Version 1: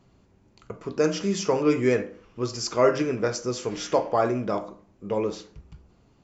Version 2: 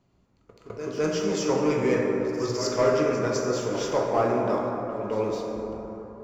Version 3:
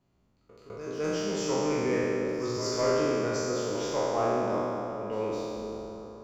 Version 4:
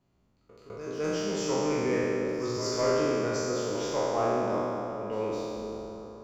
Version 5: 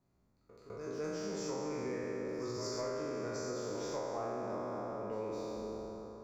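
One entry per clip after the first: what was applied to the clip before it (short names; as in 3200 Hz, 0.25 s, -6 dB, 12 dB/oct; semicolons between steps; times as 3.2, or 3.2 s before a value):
pre-echo 0.207 s -12 dB; sample leveller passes 1; plate-style reverb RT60 4.2 s, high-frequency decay 0.3×, DRR -0.5 dB; gain -6.5 dB
spectral trails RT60 2.29 s; gain -7.5 dB
nothing audible
bell 3000 Hz -12.5 dB 0.34 oct; compressor, threshold -31 dBFS, peak gain reduction 9.5 dB; gain -4.5 dB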